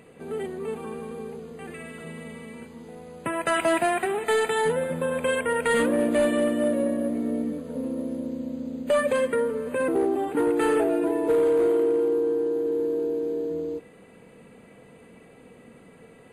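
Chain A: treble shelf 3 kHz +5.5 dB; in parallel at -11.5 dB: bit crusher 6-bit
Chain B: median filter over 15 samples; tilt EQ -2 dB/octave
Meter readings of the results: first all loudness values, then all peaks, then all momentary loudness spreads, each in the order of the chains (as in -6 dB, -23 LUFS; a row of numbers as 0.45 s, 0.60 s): -22.5 LUFS, -23.0 LUFS; -10.5 dBFS, -11.0 dBFS; 16 LU, 17 LU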